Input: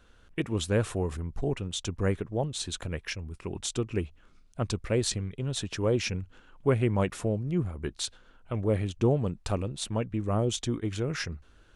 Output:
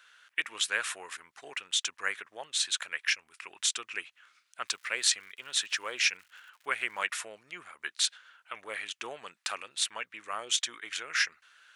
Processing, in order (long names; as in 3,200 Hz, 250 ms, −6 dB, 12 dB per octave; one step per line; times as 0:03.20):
0:04.65–0:07.06: surface crackle 200 per second −53 dBFS
high-pass with resonance 1,700 Hz, resonance Q 1.6
level +5 dB